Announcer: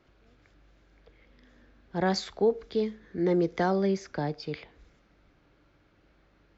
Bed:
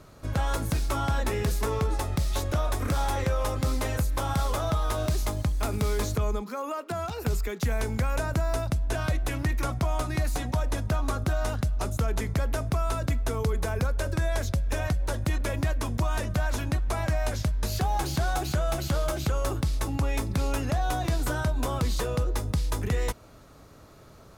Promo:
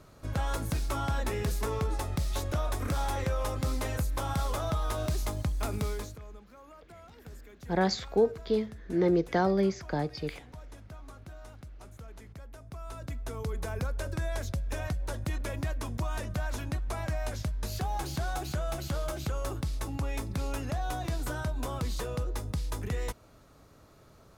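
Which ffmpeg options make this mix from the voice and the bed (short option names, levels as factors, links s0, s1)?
-filter_complex "[0:a]adelay=5750,volume=1[s0];[1:a]volume=3.16,afade=t=out:st=5.77:d=0.41:silence=0.158489,afade=t=in:st=12.61:d=1.13:silence=0.199526[s1];[s0][s1]amix=inputs=2:normalize=0"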